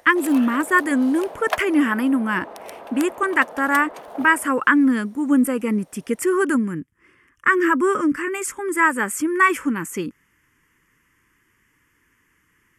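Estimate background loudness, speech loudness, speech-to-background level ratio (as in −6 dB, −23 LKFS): −35.5 LKFS, −20.0 LKFS, 15.5 dB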